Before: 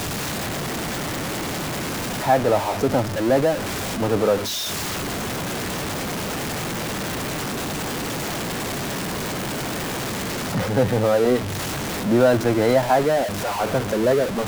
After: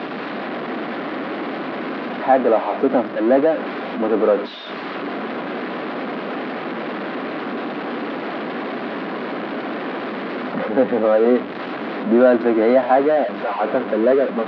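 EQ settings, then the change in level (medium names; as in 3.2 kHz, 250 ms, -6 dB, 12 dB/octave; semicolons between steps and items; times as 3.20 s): elliptic band-pass 240–4600 Hz, stop band 50 dB; distance through air 490 m; band-stop 890 Hz, Q 12; +5.5 dB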